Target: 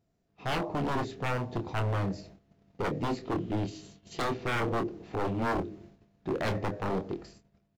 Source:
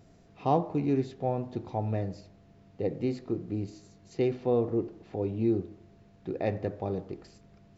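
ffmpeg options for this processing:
ffmpeg -i in.wav -filter_complex "[0:a]asettb=1/sr,asplit=3[link_01][link_02][link_03];[link_01]atrim=end=3.254[link_04];[link_02]atrim=start=3.25:end=4.22,asetpts=PTS-STARTPTS,afade=type=in:duration=0.004:curve=qsin,afade=type=out:start_time=0.966:duration=0.004:curve=qsin,equalizer=frequency=3100:width_type=o:width=0.47:gain=13.5[link_05];[link_03]atrim=start=4.216[link_06];[link_04][link_05]acrossfade=duration=0.004:curve1=hsin:curve2=qsin[link_07];[link_07][link_06]acrossfade=duration=0.004:curve1=qsin:curve2=hsin,agate=range=-14dB:threshold=-54dB:ratio=16:detection=peak,dynaudnorm=framelen=120:gausssize=9:maxgain=8.5dB,aeval=exprs='0.0944*(abs(mod(val(0)/0.0944+3,4)-2)-1)':channel_layout=same,asplit=2[link_08][link_09];[link_09]adelay=26,volume=-8dB[link_10];[link_08][link_10]amix=inputs=2:normalize=0,volume=-4.5dB" out.wav

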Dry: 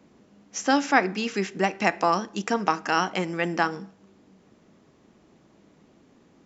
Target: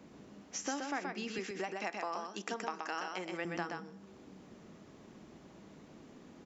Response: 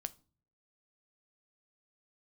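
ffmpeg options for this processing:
-filter_complex "[0:a]asettb=1/sr,asplit=3[link_01][link_02][link_03];[link_01]atrim=end=1.384[link_04];[link_02]atrim=start=1.38:end=3.45,asetpts=PTS-STARTPTS,afade=type=in:duration=0.004:curve=qsin,afade=type=out:start_time=2.066:duration=0.004:curve=qsin,highpass=300[link_05];[link_03]atrim=start=3.446[link_06];[link_04][link_05]acrossfade=duration=0.004:curve1=hsin:curve2=qsin[link_07];[link_07][link_06]acrossfade=duration=0.004:curve1=qsin:curve2=hsin,acompressor=threshold=-43dB:ratio=3,aecho=1:1:125:0.631,volume=1dB"

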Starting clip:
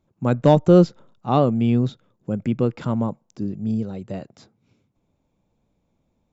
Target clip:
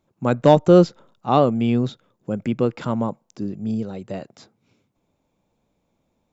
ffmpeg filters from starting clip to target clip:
ffmpeg -i in.wav -af "lowshelf=frequency=220:gain=-8.5,volume=3.5dB" out.wav

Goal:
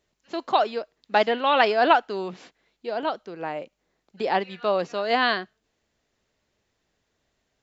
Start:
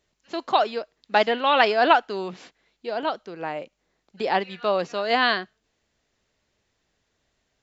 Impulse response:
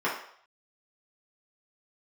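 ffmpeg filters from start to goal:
-af "equalizer=frequency=370:width=0.32:gain=2.5,volume=-2.5dB"

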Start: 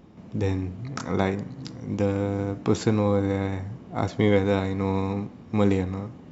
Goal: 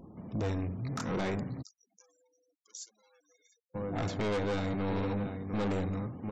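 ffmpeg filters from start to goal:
ffmpeg -i in.wav -filter_complex "[0:a]asoftclip=type=hard:threshold=-16.5dB,asplit=2[link_01][link_02];[link_02]adelay=699.7,volume=-11dB,highshelf=frequency=4000:gain=-15.7[link_03];[link_01][link_03]amix=inputs=2:normalize=0,asoftclip=type=tanh:threshold=-29dB,asplit=3[link_04][link_05][link_06];[link_04]afade=type=out:start_time=1.61:duration=0.02[link_07];[link_05]bandpass=frequency=6300:width_type=q:width=4:csg=0,afade=type=in:start_time=1.61:duration=0.02,afade=type=out:start_time=3.74:duration=0.02[link_08];[link_06]afade=type=in:start_time=3.74:duration=0.02[link_09];[link_07][link_08][link_09]amix=inputs=3:normalize=0,afftfilt=real='re*gte(hypot(re,im),0.00158)':imag='im*gte(hypot(re,im),0.00158)':win_size=1024:overlap=0.75" out.wav

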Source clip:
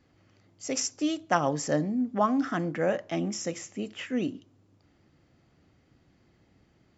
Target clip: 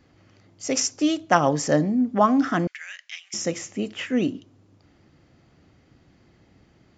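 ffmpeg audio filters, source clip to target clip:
ffmpeg -i in.wav -filter_complex "[0:a]asettb=1/sr,asplit=3[link_01][link_02][link_03];[link_01]atrim=end=2.674[link_04];[link_02]atrim=start=2.67:end=3.34,asetpts=PTS-STARTPTS,afade=type=in:duration=0.004:curve=qsin,afade=type=out:start_time=0.666:duration=0.004:curve=qsin,asuperpass=centerf=5700:order=8:qfactor=0.52[link_05];[link_03]atrim=start=3.336[link_06];[link_04][link_05]acrossfade=duration=0.004:curve1=hsin:curve2=qsin[link_07];[link_07][link_06]acrossfade=duration=0.004:curve1=qsin:curve2=hsin,aresample=16000,aresample=44100,volume=6.5dB" out.wav

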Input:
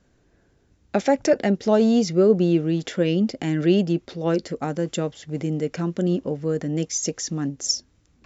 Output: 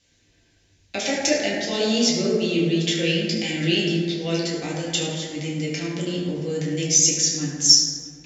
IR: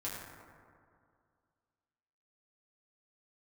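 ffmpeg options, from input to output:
-filter_complex "[0:a]aemphasis=mode=reproduction:type=50fm,aexciter=amount=13:drive=5:freq=2100[link_01];[1:a]atrim=start_sample=2205[link_02];[link_01][link_02]afir=irnorm=-1:irlink=0,volume=-6dB"

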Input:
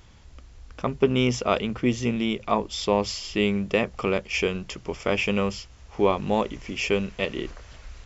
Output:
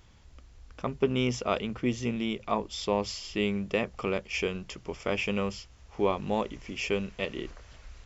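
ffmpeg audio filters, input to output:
ffmpeg -i in.wav -af "volume=-5.5dB" out.wav

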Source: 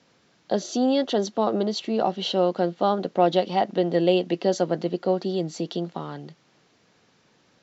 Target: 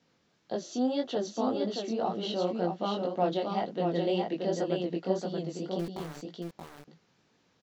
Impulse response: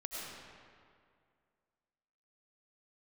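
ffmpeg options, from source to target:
-filter_complex "[0:a]lowshelf=frequency=230:gain=3.5,flanger=delay=17:depth=7.3:speed=1.9,asettb=1/sr,asplit=3[link_01][link_02][link_03];[link_01]atrim=end=5.794[link_04];[link_02]atrim=start=5.79:end=6.25,asetpts=PTS-STARTPTS,afade=type=in:duration=0.004:curve=qsin,afade=type=out:start_time=0.456:duration=0.004:curve=qsin,aeval=exprs='val(0)*gte(abs(val(0)),0.0211)':channel_layout=same[link_05];[link_03]atrim=start=6.246[link_06];[link_04][link_05]acrossfade=duration=0.004:curve1=hsin:curve2=qsin[link_07];[link_07][link_06]acrossfade=duration=0.004:curve1=qsin:curve2=hsin,asplit=2[link_08][link_09];[link_09]aecho=0:1:628:0.631[link_10];[link_08][link_10]amix=inputs=2:normalize=0,volume=-6.5dB"

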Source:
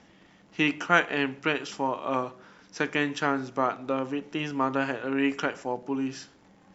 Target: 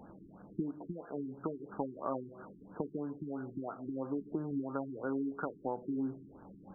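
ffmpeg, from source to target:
ffmpeg -i in.wav -af "acompressor=threshold=-37dB:ratio=6,afftfilt=real='re*lt(b*sr/1024,380*pow(1700/380,0.5+0.5*sin(2*PI*3*pts/sr)))':imag='im*lt(b*sr/1024,380*pow(1700/380,0.5+0.5*sin(2*PI*3*pts/sr)))':win_size=1024:overlap=0.75,volume=4.5dB" out.wav

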